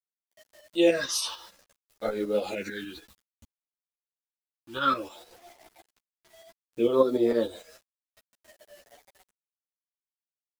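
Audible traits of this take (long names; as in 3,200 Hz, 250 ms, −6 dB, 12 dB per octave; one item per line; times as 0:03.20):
phaser sweep stages 6, 0.59 Hz, lowest notch 540–2,800 Hz
a quantiser's noise floor 10 bits, dither none
tremolo saw up 6.7 Hz, depth 60%
a shimmering, thickened sound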